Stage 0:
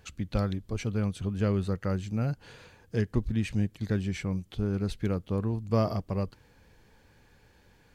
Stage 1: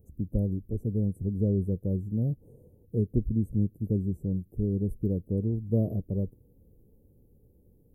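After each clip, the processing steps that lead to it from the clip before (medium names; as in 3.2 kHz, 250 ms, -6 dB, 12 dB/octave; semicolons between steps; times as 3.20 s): inverse Chebyshev band-stop 1.5–4.5 kHz, stop band 70 dB; trim +1.5 dB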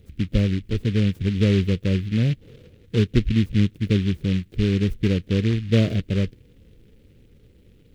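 delay time shaken by noise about 2.5 kHz, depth 0.1 ms; trim +7.5 dB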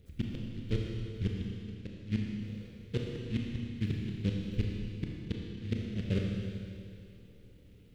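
inverted gate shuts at -13 dBFS, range -31 dB; Schroeder reverb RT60 2.5 s, combs from 26 ms, DRR -1 dB; trim -7.5 dB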